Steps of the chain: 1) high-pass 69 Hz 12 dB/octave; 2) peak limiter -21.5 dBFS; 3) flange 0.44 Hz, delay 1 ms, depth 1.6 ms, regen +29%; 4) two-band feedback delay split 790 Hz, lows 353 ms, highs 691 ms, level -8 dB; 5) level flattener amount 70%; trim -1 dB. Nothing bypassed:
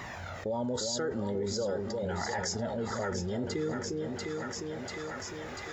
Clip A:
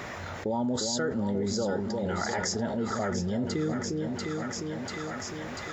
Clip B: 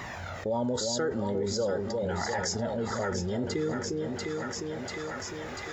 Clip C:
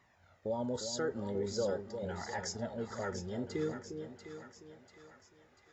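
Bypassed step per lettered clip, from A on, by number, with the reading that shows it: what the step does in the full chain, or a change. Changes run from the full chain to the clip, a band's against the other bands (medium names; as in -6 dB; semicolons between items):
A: 3, 250 Hz band +3.0 dB; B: 2, loudness change +2.5 LU; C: 5, momentary loudness spread change +12 LU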